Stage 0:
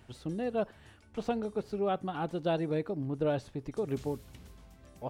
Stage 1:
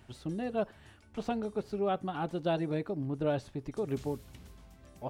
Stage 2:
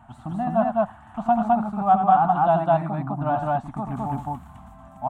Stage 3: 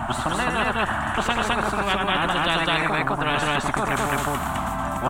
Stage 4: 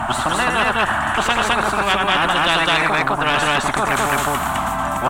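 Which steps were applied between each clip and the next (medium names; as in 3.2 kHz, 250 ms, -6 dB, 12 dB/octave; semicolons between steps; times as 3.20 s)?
band-stop 480 Hz, Q 12
FFT filter 100 Hz 0 dB, 230 Hz +6 dB, 470 Hz -23 dB, 710 Hz +15 dB, 1.2 kHz +11 dB, 2.1 kHz -6 dB, 3.3 kHz -8 dB, 5 kHz -20 dB, 7.7 kHz -5 dB, 11 kHz -10 dB; on a send: loudspeakers at several distances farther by 29 m -8 dB, 72 m 0 dB; on the sum: trim +3 dB
spectrum-flattening compressor 10:1
bass shelf 420 Hz -6.5 dB; sine folder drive 5 dB, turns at -7 dBFS; trim -1.5 dB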